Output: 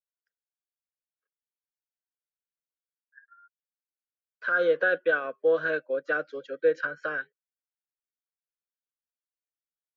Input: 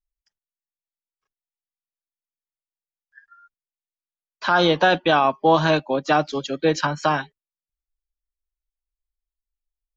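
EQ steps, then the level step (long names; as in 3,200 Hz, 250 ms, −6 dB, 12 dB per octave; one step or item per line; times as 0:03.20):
pair of resonant band-passes 870 Hz, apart 1.6 octaves
0.0 dB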